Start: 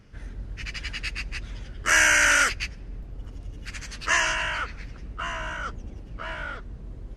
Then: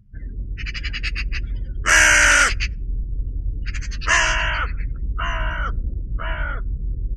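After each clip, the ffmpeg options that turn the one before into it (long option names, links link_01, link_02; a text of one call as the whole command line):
ffmpeg -i in.wav -af "asubboost=boost=2.5:cutoff=140,afftdn=noise_reduction=33:noise_floor=-43,volume=5.5dB" out.wav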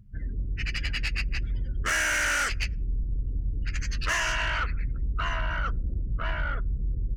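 ffmpeg -i in.wav -af "acompressor=threshold=-22dB:ratio=3,asoftclip=type=tanh:threshold=-21dB" out.wav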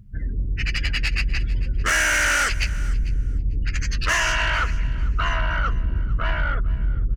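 ffmpeg -i in.wav -af "aecho=1:1:447|894:0.119|0.019,volume=6dB" out.wav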